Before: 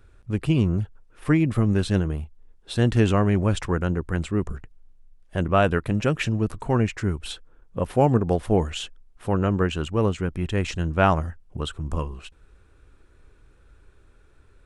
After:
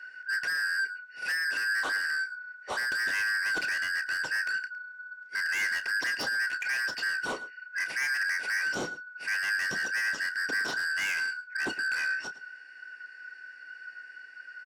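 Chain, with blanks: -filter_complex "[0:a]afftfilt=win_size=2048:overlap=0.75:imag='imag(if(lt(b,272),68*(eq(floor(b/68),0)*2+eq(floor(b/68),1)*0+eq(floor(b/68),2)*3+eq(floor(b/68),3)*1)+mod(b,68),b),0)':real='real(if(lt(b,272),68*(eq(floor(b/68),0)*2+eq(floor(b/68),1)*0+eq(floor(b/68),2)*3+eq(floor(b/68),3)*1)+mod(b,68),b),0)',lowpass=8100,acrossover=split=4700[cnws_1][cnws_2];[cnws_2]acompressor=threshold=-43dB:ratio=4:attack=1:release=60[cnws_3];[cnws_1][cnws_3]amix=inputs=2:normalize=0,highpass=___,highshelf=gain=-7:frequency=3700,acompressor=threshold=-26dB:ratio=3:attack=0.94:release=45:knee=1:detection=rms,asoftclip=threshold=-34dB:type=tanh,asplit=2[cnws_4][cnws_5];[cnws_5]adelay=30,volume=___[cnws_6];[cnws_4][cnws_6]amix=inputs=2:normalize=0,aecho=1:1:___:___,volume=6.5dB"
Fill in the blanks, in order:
250, -11dB, 110, 0.126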